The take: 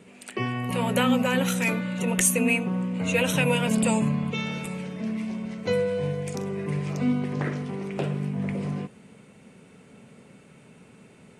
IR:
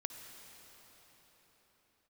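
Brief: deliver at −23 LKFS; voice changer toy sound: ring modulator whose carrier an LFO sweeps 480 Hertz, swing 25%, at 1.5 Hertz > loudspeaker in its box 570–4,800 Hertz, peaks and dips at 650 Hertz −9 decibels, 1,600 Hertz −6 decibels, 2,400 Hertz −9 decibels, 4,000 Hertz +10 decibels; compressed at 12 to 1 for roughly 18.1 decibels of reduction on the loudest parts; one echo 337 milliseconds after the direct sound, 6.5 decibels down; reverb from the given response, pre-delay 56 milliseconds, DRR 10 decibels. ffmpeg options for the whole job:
-filter_complex "[0:a]acompressor=threshold=-37dB:ratio=12,aecho=1:1:337:0.473,asplit=2[link_01][link_02];[1:a]atrim=start_sample=2205,adelay=56[link_03];[link_02][link_03]afir=irnorm=-1:irlink=0,volume=-8.5dB[link_04];[link_01][link_04]amix=inputs=2:normalize=0,aeval=exprs='val(0)*sin(2*PI*480*n/s+480*0.25/1.5*sin(2*PI*1.5*n/s))':channel_layout=same,highpass=570,equalizer=frequency=650:width_type=q:width=4:gain=-9,equalizer=frequency=1600:width_type=q:width=4:gain=-6,equalizer=frequency=2400:width_type=q:width=4:gain=-9,equalizer=frequency=4000:width_type=q:width=4:gain=10,lowpass=frequency=4800:width=0.5412,lowpass=frequency=4800:width=1.3066,volume=24.5dB"

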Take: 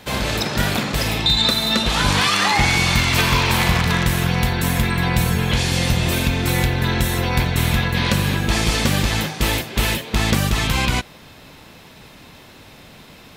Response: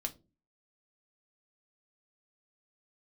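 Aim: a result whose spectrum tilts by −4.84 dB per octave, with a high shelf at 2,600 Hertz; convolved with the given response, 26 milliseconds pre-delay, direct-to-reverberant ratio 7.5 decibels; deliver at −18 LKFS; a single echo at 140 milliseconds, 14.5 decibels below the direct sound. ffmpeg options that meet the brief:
-filter_complex "[0:a]highshelf=frequency=2600:gain=-6,aecho=1:1:140:0.188,asplit=2[link_01][link_02];[1:a]atrim=start_sample=2205,adelay=26[link_03];[link_02][link_03]afir=irnorm=-1:irlink=0,volume=-7.5dB[link_04];[link_01][link_04]amix=inputs=2:normalize=0,volume=1.5dB"

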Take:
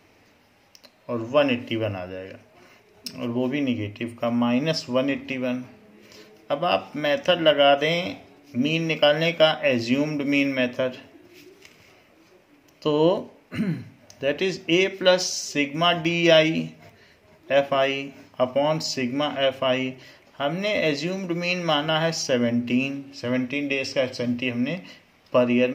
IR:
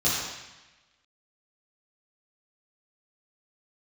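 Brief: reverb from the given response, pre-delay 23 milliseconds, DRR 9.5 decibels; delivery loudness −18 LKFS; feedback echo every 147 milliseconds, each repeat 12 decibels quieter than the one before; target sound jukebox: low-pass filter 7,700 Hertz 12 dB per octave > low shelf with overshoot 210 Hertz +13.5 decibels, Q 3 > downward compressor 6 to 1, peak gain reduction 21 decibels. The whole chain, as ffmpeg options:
-filter_complex "[0:a]aecho=1:1:147|294|441:0.251|0.0628|0.0157,asplit=2[link_01][link_02];[1:a]atrim=start_sample=2205,adelay=23[link_03];[link_02][link_03]afir=irnorm=-1:irlink=0,volume=-22.5dB[link_04];[link_01][link_04]amix=inputs=2:normalize=0,lowpass=7700,lowshelf=frequency=210:width_type=q:width=3:gain=13.5,acompressor=threshold=-29dB:ratio=6,volume=14dB"

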